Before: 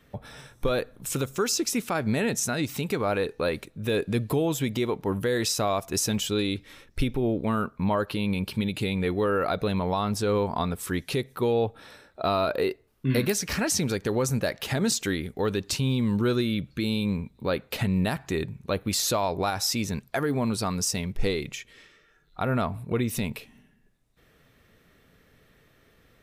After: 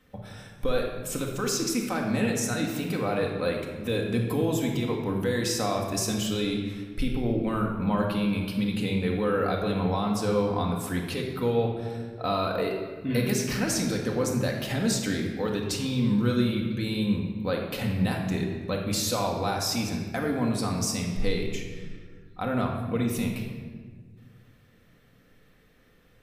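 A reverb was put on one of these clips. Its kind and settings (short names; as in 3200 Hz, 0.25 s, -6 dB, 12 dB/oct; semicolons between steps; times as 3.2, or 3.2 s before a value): shoebox room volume 1700 m³, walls mixed, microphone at 2 m; gain -4.5 dB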